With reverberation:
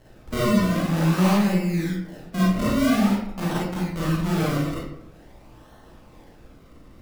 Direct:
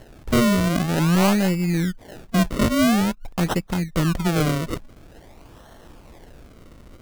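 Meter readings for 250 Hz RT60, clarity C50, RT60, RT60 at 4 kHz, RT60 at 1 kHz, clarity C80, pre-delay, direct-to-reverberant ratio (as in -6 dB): 0.85 s, -0.5 dB, 0.80 s, 0.45 s, 0.80 s, 4.0 dB, 31 ms, -7.0 dB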